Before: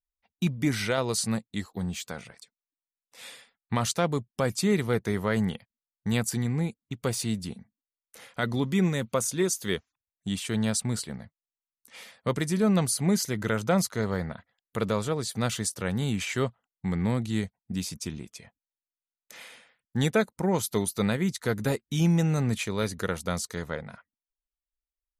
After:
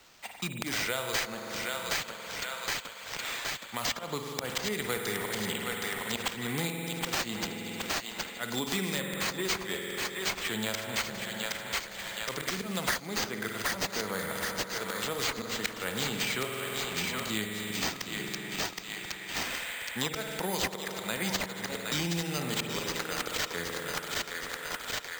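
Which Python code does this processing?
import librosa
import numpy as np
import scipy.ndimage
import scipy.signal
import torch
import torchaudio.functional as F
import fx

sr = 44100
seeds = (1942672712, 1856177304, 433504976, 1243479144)

p1 = fx.highpass(x, sr, hz=670.0, slope=6)
p2 = fx.auto_swell(p1, sr, attack_ms=323.0)
p3 = fx.high_shelf(p2, sr, hz=5200.0, db=11.5)
p4 = fx.rider(p3, sr, range_db=10, speed_s=0.5)
p5 = p3 + (p4 * 10.0 ** (1.0 / 20.0))
p6 = fx.echo_thinned(p5, sr, ms=769, feedback_pct=40, hz=940.0, wet_db=-6.0)
p7 = fx.rev_spring(p6, sr, rt60_s=2.1, pass_ms=(47,), chirp_ms=30, drr_db=2.0)
p8 = np.repeat(p7[::4], 4)[:len(p7)]
p9 = fx.band_squash(p8, sr, depth_pct=100)
y = p9 * 10.0 ** (-7.5 / 20.0)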